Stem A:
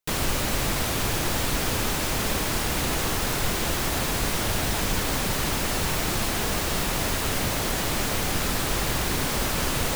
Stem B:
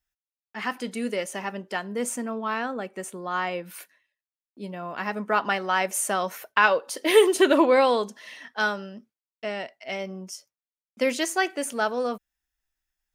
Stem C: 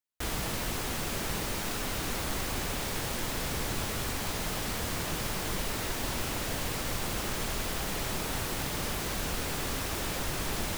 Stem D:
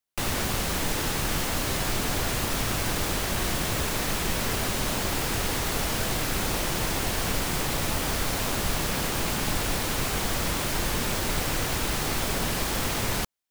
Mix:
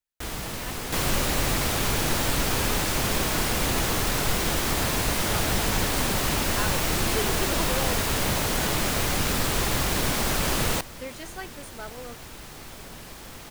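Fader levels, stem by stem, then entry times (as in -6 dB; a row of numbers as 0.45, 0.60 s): 0.0, -14.5, 0.0, -14.5 dB; 0.85, 0.00, 0.00, 0.50 s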